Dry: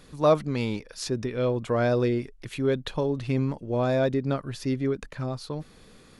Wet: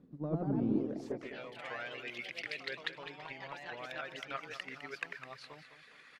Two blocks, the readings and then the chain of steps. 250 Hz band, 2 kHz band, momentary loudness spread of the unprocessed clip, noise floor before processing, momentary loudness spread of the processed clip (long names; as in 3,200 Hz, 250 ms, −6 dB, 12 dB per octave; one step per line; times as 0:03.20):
−10.5 dB, −3.0 dB, 10 LU, −53 dBFS, 14 LU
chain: reverb reduction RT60 0.56 s
dynamic equaliser 140 Hz, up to +5 dB, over −39 dBFS, Q 1.2
reversed playback
downward compressor 6 to 1, threshold −36 dBFS, peak gain reduction 19.5 dB
reversed playback
band-pass filter sweep 230 Hz → 2,000 Hz, 0:00.69–0:01.41
transient designer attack +8 dB, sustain 0 dB
delay with pitch and tempo change per echo 119 ms, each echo +2 semitones, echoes 3
on a send: repeating echo 207 ms, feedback 42%, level −11.5 dB
on the sum: level +7 dB